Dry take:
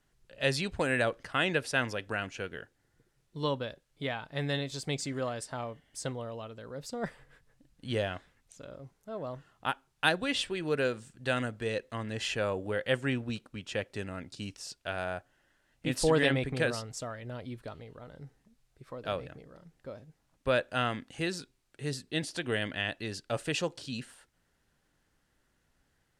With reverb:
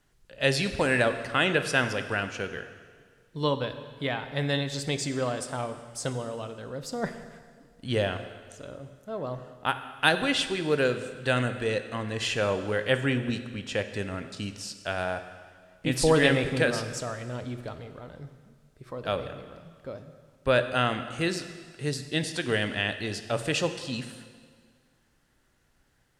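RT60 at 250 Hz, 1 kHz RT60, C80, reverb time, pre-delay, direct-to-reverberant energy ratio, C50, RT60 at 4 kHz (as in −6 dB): 1.8 s, 1.8 s, 11.0 dB, 1.9 s, 7 ms, 9.0 dB, 10.5 dB, 1.7 s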